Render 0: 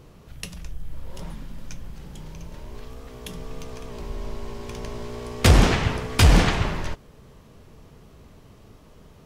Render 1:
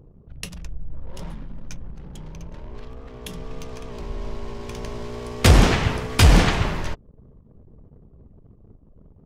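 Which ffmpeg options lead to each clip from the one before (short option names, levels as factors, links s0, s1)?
-af "anlmdn=0.0251,volume=1.19"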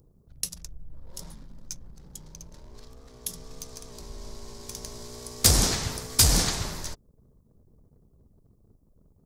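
-af "aexciter=amount=6.3:drive=6.9:freq=4100,volume=0.299"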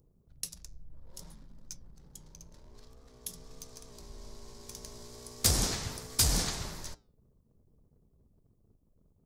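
-af "flanger=delay=4.6:depth=5.2:regen=-86:speed=0.62:shape=sinusoidal,volume=0.75"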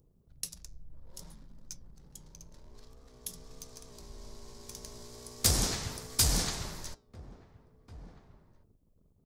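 -filter_complex "[0:a]asplit=2[s0][s1];[s1]adelay=1691,volume=0.126,highshelf=f=4000:g=-38[s2];[s0][s2]amix=inputs=2:normalize=0"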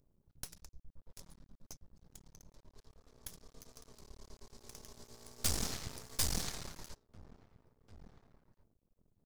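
-af "aeval=exprs='max(val(0),0)':c=same,volume=0.668"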